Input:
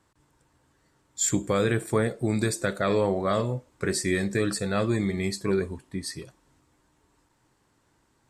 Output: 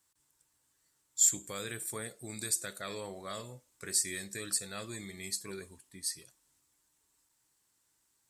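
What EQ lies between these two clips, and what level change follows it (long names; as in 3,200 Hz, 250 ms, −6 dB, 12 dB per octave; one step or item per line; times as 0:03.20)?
first-order pre-emphasis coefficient 0.9
high-shelf EQ 8,100 Hz +4 dB
0.0 dB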